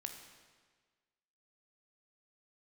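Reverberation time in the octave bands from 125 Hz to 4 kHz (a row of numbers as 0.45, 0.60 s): 1.5, 1.5, 1.5, 1.5, 1.4, 1.3 s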